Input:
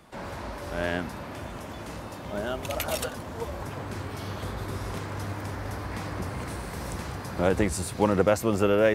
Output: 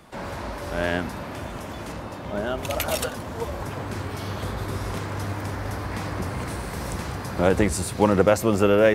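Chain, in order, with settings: 1.92–2.58 s: treble shelf 4.7 kHz -7 dB; on a send: reverberation RT60 1.0 s, pre-delay 4 ms, DRR 22 dB; on the sum: trim +4 dB

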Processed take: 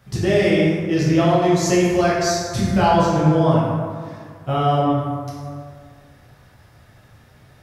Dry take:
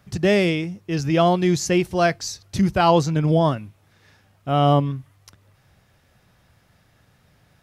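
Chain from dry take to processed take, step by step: compression 3:1, threshold -23 dBFS, peak gain reduction 9 dB; plate-style reverb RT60 2 s, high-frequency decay 0.45×, DRR -7.5 dB

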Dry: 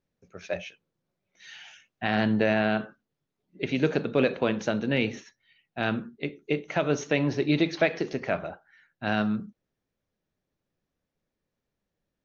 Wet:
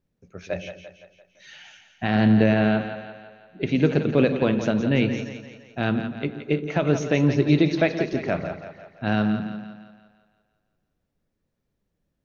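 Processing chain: bass shelf 320 Hz +9 dB; two-band feedback delay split 450 Hz, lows 119 ms, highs 171 ms, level -9 dB

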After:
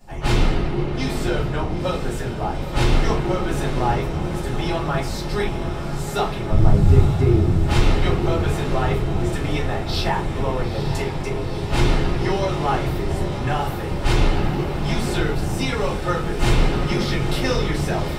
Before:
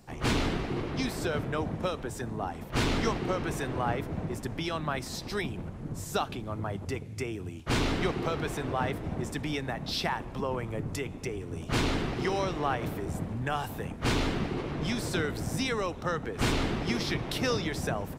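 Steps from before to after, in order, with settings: 6.49–7.63 s: tilt EQ -4.5 dB/octave; on a send: echo that smears into a reverb 912 ms, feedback 77%, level -9 dB; on the sum: simulated room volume 120 m³, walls furnished, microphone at 4.2 m; trim -3.5 dB

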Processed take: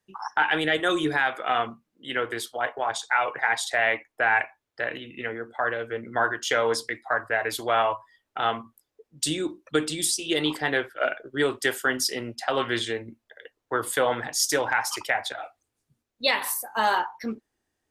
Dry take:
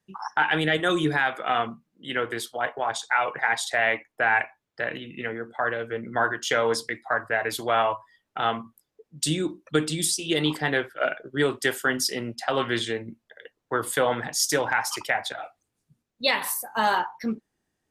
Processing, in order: peaking EQ 170 Hz -9.5 dB 0.66 oct

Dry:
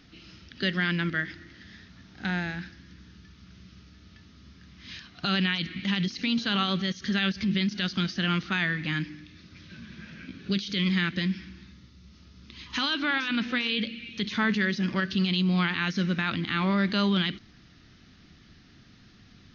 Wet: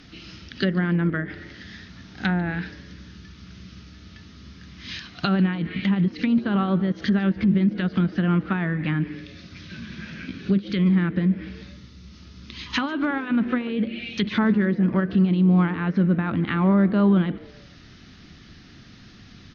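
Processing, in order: low-pass that closes with the level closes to 900 Hz, closed at -24.5 dBFS; frequency-shifting echo 145 ms, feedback 36%, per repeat +130 Hz, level -22 dB; trim +7.5 dB

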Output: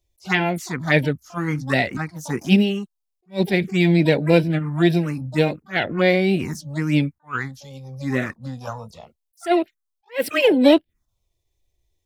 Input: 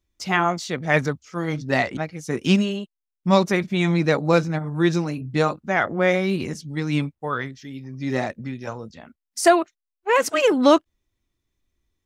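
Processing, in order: harmony voices +12 st -12 dB; touch-sensitive phaser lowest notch 230 Hz, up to 1.2 kHz, full sweep at -16.5 dBFS; attacks held to a fixed rise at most 320 dB/s; trim +4 dB

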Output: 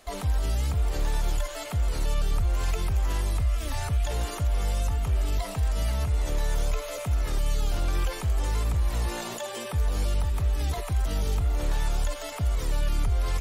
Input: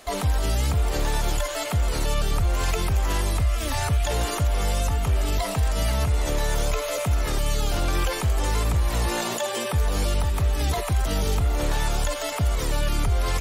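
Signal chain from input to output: bass shelf 66 Hz +9 dB; trim -7.5 dB

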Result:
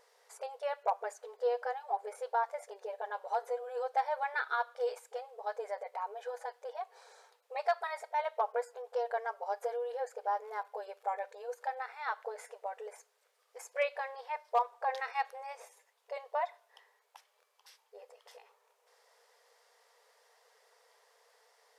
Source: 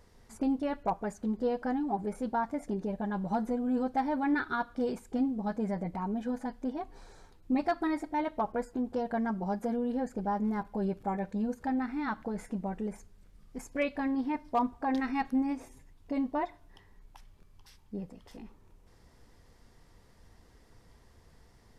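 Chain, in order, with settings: brick-wall FIR high-pass 420 Hz

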